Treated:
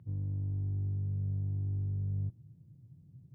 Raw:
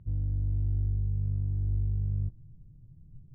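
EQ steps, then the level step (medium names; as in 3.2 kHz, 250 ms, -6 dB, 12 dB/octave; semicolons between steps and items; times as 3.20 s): high-pass 98 Hz 24 dB/octave; 0.0 dB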